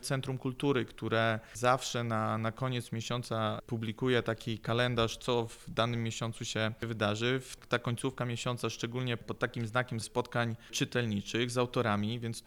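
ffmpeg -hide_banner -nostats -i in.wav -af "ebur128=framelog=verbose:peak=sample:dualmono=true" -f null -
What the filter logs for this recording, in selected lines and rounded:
Integrated loudness:
  I:         -30.3 LUFS
  Threshold: -40.3 LUFS
Loudness range:
  LRA:         1.8 LU
  Threshold: -50.5 LUFS
  LRA low:   -31.6 LUFS
  LRA high:  -29.7 LUFS
Sample peak:
  Peak:      -13.5 dBFS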